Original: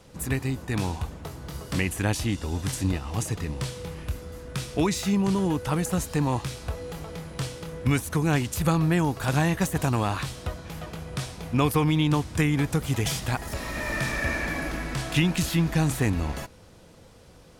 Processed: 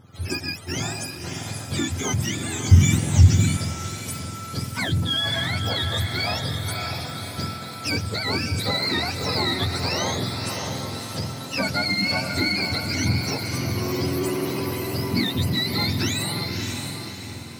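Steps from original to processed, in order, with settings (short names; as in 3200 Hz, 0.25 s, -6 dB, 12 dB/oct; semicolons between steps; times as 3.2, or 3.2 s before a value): spectrum mirrored in octaves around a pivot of 810 Hz; diffused feedback echo 0.599 s, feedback 48%, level -5 dB; in parallel at -5.5 dB: hard clip -26.5 dBFS, distortion -8 dB; 2.71–3.57 on the sum: tone controls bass +15 dB, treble +2 dB; mismatched tape noise reduction decoder only; gain -1 dB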